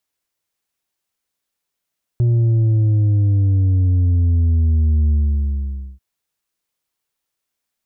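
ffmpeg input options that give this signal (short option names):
-f lavfi -i "aevalsrc='0.237*clip((3.79-t)/0.88,0,1)*tanh(1.68*sin(2*PI*120*3.79/log(65/120)*(exp(log(65/120)*t/3.79)-1)))/tanh(1.68)':d=3.79:s=44100"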